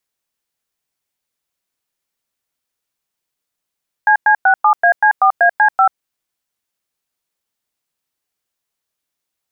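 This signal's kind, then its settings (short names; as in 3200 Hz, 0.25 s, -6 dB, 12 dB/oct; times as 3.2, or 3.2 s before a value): DTMF "CC67AC4AC5", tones 88 ms, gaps 0.103 s, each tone -10 dBFS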